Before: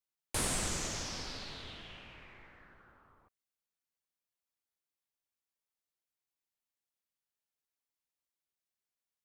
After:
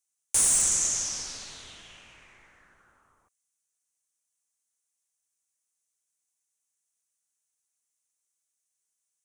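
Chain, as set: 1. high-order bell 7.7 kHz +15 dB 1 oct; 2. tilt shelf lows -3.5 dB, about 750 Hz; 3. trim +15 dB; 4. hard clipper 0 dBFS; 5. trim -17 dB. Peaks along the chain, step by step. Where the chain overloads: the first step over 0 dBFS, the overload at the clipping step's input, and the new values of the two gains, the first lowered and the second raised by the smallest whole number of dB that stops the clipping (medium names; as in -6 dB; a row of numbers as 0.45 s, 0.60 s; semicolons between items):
-11.5 dBFS, -8.0 dBFS, +7.0 dBFS, 0.0 dBFS, -17.0 dBFS; step 3, 7.0 dB; step 3 +8 dB, step 5 -10 dB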